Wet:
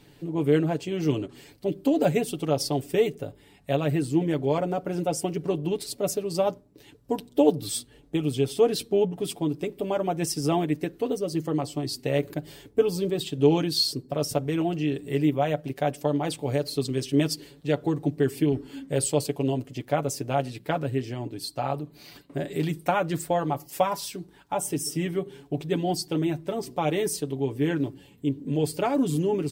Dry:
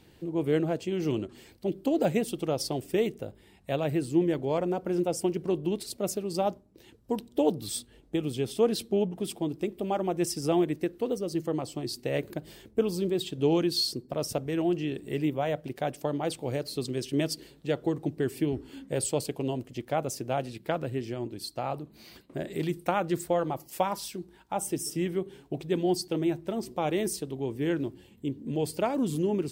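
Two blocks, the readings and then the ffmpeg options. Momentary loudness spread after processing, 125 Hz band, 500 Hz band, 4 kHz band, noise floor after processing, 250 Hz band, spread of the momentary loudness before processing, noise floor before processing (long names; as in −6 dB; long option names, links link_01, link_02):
9 LU, +5.5 dB, +3.5 dB, +3.5 dB, −55 dBFS, +3.0 dB, 9 LU, −57 dBFS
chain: -af "aecho=1:1:7:0.65,volume=2dB"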